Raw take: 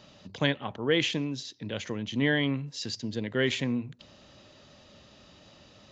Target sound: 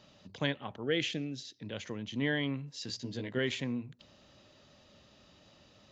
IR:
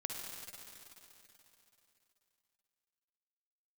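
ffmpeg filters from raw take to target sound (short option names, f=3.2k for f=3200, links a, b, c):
-filter_complex "[0:a]asettb=1/sr,asplit=3[a][b][c];[a]atrim=end=0.834[d];[b]atrim=start=0.83:end=1.59,asetpts=PTS-STARTPTS,afade=t=in:d=0.004:c=qsin,afade=t=out:st=0.756:d=0.004:c=qsin,asuperstop=centerf=1000:order=4:qfactor=2.3[e];[c]atrim=start=1.586[f];[d][e]acrossfade=d=0.004:c1=hsin:c2=qsin[g];[g][f]acrossfade=d=0.004:c1=qsin:c2=hsin,asettb=1/sr,asplit=3[h][i][j];[h]atrim=end=2.874[k];[i]atrim=start=2.87:end=3.39,asetpts=PTS-STARTPTS,afade=t=in:d=0.004:c=qsin,afade=t=out:st=0.516:d=0.004:c=qsin,asplit=2[l][m];[m]adelay=16,volume=-2.5dB[n];[l][n]amix=inputs=2:normalize=0,atrim=end_sample=22932[o];[j]atrim=start=3.386[p];[k][o]acrossfade=d=0.004:c1=hsin:c2=qsin[q];[q][p]acrossfade=d=0.004:c1=qsin:c2=hsin,volume=-6dB"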